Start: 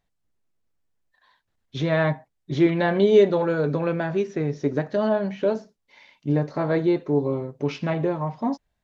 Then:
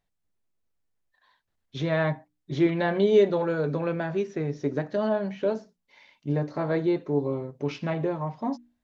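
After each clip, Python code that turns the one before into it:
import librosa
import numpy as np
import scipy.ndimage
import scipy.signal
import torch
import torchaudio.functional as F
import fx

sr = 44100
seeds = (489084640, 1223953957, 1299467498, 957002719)

y = fx.hum_notches(x, sr, base_hz=60, count=5)
y = F.gain(torch.from_numpy(y), -3.5).numpy()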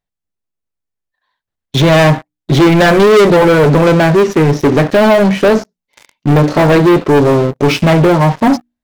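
y = fx.leveller(x, sr, passes=5)
y = F.gain(torch.from_numpy(y), 6.5).numpy()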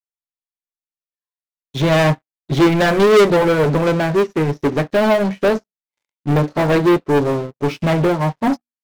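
y = fx.upward_expand(x, sr, threshold_db=-27.0, expansion=2.5)
y = F.gain(torch.from_numpy(y), -3.0).numpy()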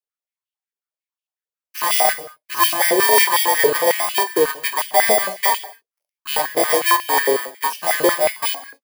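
y = fx.bit_reversed(x, sr, seeds[0], block=32)
y = fx.rev_gated(y, sr, seeds[1], gate_ms=250, shape='falling', drr_db=10.0)
y = fx.filter_held_highpass(y, sr, hz=11.0, low_hz=460.0, high_hz=2800.0)
y = F.gain(torch.from_numpy(y), -2.5).numpy()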